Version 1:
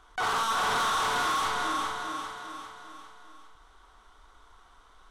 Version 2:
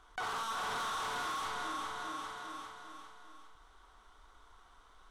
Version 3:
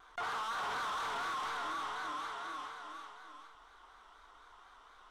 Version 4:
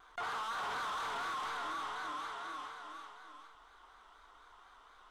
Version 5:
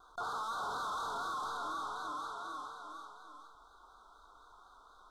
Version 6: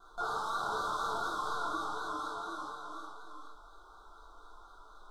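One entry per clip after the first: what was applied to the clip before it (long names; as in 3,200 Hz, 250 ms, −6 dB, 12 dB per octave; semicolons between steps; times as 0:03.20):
downward compressor 3 to 1, threshold −34 dBFS, peak gain reduction 6.5 dB; level −4 dB
mid-hump overdrive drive 13 dB, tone 3,100 Hz, clips at −29 dBFS; pitch vibrato 4.1 Hz 86 cents; level −2.5 dB
notch filter 5,600 Hz, Q 27; level −1 dB
elliptic band-stop filter 1,400–3,700 Hz, stop band 40 dB; level +1.5 dB
rectangular room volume 44 cubic metres, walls mixed, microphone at 1.1 metres; level −2.5 dB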